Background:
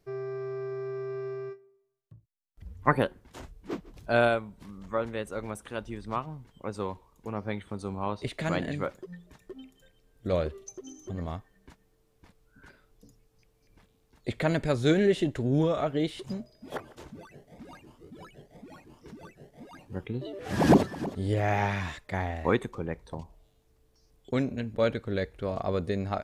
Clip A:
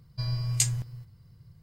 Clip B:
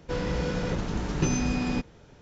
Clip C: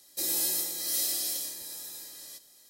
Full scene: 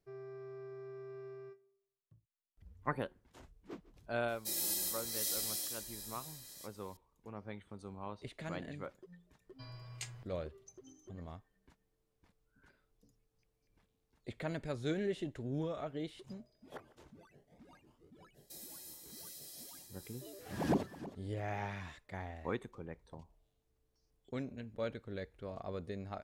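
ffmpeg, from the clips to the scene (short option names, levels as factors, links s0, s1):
-filter_complex "[3:a]asplit=2[s0][s1];[0:a]volume=0.224[s2];[s0]flanger=delay=15.5:depth=2.6:speed=2.1[s3];[1:a]acrossover=split=290 3500:gain=0.224 1 0.178[s4][s5][s6];[s4][s5][s6]amix=inputs=3:normalize=0[s7];[s1]alimiter=level_in=1.26:limit=0.0631:level=0:latency=1:release=460,volume=0.794[s8];[s3]atrim=end=2.69,asetpts=PTS-STARTPTS,volume=0.631,afade=t=in:d=0.004:c=hsin,afade=t=out:st=2.686:d=0.004:c=hsin,adelay=4280[s9];[s7]atrim=end=1.62,asetpts=PTS-STARTPTS,volume=0.355,afade=t=in:d=0.1,afade=t=out:st=1.52:d=0.1,adelay=9410[s10];[s8]atrim=end=2.69,asetpts=PTS-STARTPTS,volume=0.188,afade=t=in:d=0.05,afade=t=out:st=2.64:d=0.05,adelay=18330[s11];[s2][s9][s10][s11]amix=inputs=4:normalize=0"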